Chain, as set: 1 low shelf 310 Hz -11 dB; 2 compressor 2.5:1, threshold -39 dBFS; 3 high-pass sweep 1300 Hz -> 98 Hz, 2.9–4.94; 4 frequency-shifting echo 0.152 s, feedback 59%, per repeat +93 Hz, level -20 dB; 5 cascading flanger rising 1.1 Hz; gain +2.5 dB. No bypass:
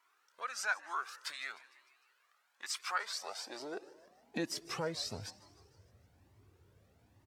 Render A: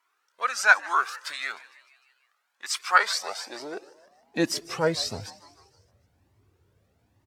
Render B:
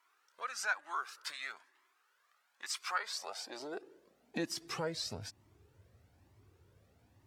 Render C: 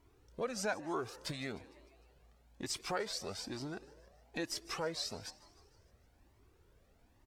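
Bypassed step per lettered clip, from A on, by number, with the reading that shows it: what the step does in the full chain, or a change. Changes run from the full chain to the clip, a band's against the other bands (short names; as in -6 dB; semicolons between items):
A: 2, mean gain reduction 9.5 dB; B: 4, momentary loudness spread change -2 LU; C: 3, 2 kHz band -6.0 dB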